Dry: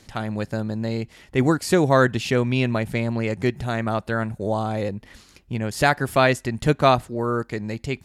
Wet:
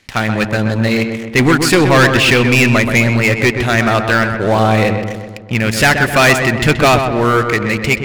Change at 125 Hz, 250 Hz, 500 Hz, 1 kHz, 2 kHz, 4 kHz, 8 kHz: +9.5 dB, +9.5 dB, +8.0 dB, +8.5 dB, +14.5 dB, +14.0 dB, +14.0 dB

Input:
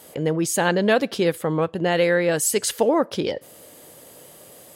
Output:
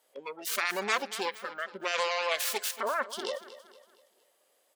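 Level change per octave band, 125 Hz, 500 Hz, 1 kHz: under -30 dB, -15.0 dB, -5.5 dB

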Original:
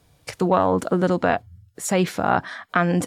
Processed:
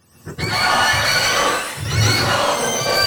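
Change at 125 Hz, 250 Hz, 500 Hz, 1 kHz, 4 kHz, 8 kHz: +4.5 dB, -6.0 dB, -0.5 dB, +4.0 dB, +20.5 dB, +12.5 dB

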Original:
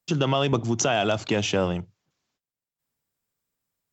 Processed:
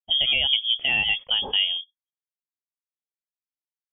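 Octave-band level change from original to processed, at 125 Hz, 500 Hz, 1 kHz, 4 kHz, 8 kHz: -19.5 dB, -18.0 dB, -11.0 dB, +13.0 dB, no reading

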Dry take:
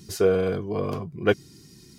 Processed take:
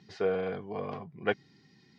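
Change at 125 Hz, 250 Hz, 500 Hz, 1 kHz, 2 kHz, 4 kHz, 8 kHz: -13.0 dB, -10.5 dB, -8.5 dB, -4.0 dB, -5.0 dB, -9.0 dB, no reading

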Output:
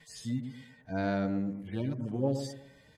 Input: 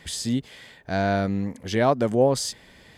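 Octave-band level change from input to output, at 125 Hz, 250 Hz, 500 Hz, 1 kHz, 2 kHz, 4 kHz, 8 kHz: -6.0 dB, -6.5 dB, -13.0 dB, -14.5 dB, -11.5 dB, -16.0 dB, under -15 dB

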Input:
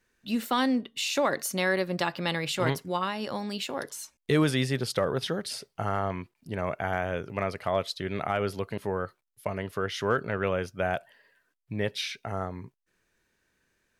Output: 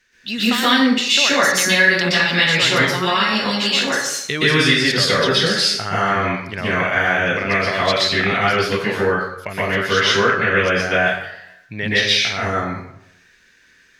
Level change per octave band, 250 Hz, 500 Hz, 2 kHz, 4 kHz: +9.5 dB, +9.0 dB, +18.5 dB, +18.5 dB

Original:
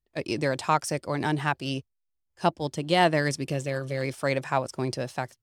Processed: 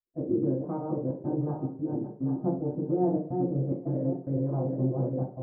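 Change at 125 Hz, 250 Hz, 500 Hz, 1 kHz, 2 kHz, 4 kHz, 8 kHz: +1.5 dB, +3.0 dB, -3.0 dB, -13.0 dB, under -35 dB, under -40 dB, under -40 dB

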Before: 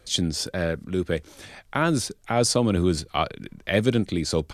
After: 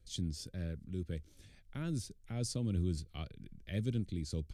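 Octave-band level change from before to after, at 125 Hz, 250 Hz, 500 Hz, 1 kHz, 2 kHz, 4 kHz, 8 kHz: -9.0 dB, -14.5 dB, -21.5 dB, -28.5 dB, -23.5 dB, -19.0 dB, -17.5 dB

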